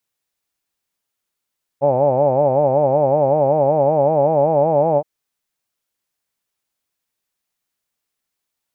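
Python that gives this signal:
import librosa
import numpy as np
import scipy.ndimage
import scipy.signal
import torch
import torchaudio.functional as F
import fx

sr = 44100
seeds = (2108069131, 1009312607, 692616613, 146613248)

y = fx.vowel(sr, seeds[0], length_s=3.22, word='hawed', hz=134.0, glide_st=2.5, vibrato_hz=5.3, vibrato_st=1.4)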